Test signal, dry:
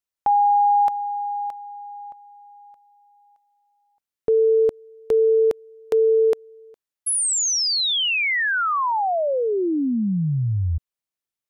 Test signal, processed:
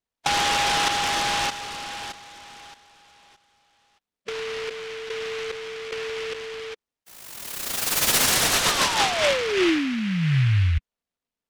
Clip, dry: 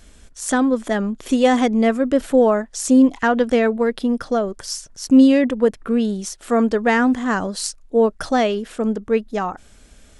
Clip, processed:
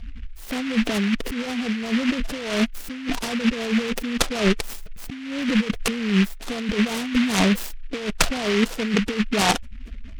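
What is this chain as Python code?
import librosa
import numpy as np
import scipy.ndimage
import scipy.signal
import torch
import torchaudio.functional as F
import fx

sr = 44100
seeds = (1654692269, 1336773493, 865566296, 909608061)

y = fx.spec_gate(x, sr, threshold_db=-15, keep='strong')
y = scipy.signal.sosfilt(scipy.signal.butter(2, 1900.0, 'lowpass', fs=sr, output='sos'), y)
y = y + 0.47 * np.pad(y, (int(4.3 * sr / 1000.0), 0))[:len(y)]
y = fx.over_compress(y, sr, threshold_db=-26.0, ratio=-1.0)
y = fx.noise_mod_delay(y, sr, seeds[0], noise_hz=2100.0, depth_ms=0.21)
y = y * 10.0 ** (2.0 / 20.0)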